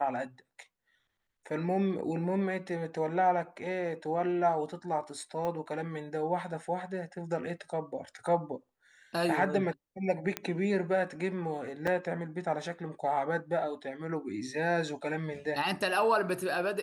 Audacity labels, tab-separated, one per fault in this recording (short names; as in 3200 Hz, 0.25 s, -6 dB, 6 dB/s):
5.450000	5.450000	pop -23 dBFS
10.370000	10.370000	pop -15 dBFS
11.870000	11.870000	gap 4.8 ms